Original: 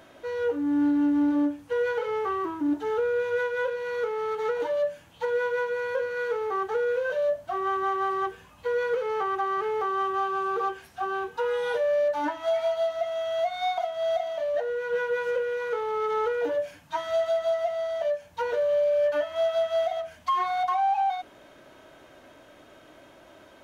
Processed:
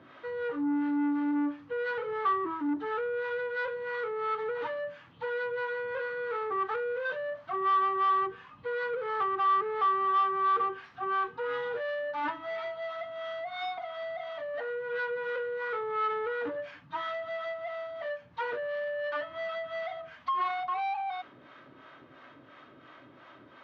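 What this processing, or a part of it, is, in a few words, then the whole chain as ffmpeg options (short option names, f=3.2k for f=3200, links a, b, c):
guitar amplifier with harmonic tremolo: -filter_complex "[0:a]acrossover=split=540[a][b];[a]aeval=exprs='val(0)*(1-0.7/2+0.7/2*cos(2*PI*2.9*n/s))':c=same[c];[b]aeval=exprs='val(0)*(1-0.7/2-0.7/2*cos(2*PI*2.9*n/s))':c=same[d];[c][d]amix=inputs=2:normalize=0,asoftclip=type=tanh:threshold=-29dB,highpass=100,equalizer=f=130:t=q:w=4:g=9,equalizer=f=260:t=q:w=4:g=5,equalizer=f=640:t=q:w=4:g=-5,equalizer=f=1.2k:t=q:w=4:g=10,equalizer=f=1.9k:t=q:w=4:g=5,lowpass=f=4.2k:w=0.5412,lowpass=f=4.2k:w=1.3066"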